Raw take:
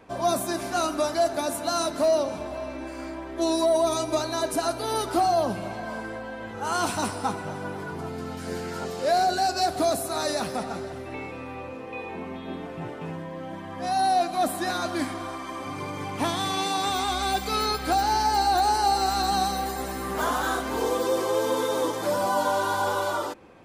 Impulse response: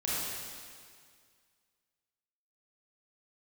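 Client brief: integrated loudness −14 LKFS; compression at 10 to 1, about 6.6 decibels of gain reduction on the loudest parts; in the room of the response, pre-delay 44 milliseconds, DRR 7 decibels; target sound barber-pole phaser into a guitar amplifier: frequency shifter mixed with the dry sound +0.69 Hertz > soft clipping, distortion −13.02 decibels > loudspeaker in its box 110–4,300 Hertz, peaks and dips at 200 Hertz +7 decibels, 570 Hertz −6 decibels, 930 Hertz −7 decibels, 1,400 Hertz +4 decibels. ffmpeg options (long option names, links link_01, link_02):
-filter_complex "[0:a]acompressor=threshold=-25dB:ratio=10,asplit=2[link_01][link_02];[1:a]atrim=start_sample=2205,adelay=44[link_03];[link_02][link_03]afir=irnorm=-1:irlink=0,volume=-14dB[link_04];[link_01][link_04]amix=inputs=2:normalize=0,asplit=2[link_05][link_06];[link_06]afreqshift=0.69[link_07];[link_05][link_07]amix=inputs=2:normalize=1,asoftclip=threshold=-29dB,highpass=110,equalizer=frequency=200:width_type=q:width=4:gain=7,equalizer=frequency=570:width_type=q:width=4:gain=-6,equalizer=frequency=930:width_type=q:width=4:gain=-7,equalizer=frequency=1400:width_type=q:width=4:gain=4,lowpass=frequency=4300:width=0.5412,lowpass=frequency=4300:width=1.3066,volume=23dB"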